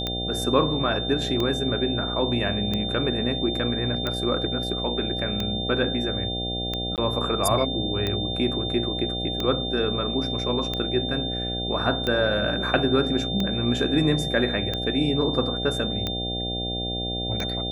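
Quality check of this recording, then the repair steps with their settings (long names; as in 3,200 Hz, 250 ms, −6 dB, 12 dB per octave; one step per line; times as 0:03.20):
mains buzz 60 Hz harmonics 13 −31 dBFS
scratch tick 45 rpm −13 dBFS
whistle 3,600 Hz −29 dBFS
0:06.96–0:06.98: drop-out 18 ms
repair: click removal
hum removal 60 Hz, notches 13
notch filter 3,600 Hz, Q 30
repair the gap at 0:06.96, 18 ms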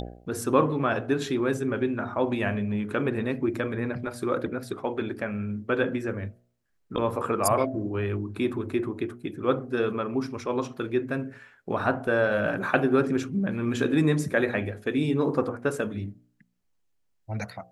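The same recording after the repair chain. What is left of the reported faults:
none of them is left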